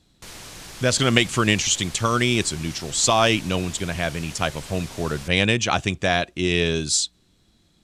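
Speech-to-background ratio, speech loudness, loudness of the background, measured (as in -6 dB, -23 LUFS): 17.0 dB, -21.5 LUFS, -38.5 LUFS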